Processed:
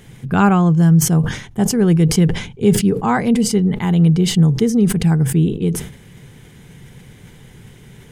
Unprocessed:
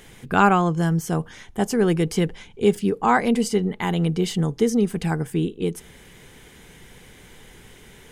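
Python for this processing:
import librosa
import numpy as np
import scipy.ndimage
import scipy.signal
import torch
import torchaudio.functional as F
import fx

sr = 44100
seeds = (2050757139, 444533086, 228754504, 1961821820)

y = fx.peak_eq(x, sr, hz=130.0, db=14.5, octaves=1.5)
y = fx.sustainer(y, sr, db_per_s=94.0)
y = y * librosa.db_to_amplitude(-1.0)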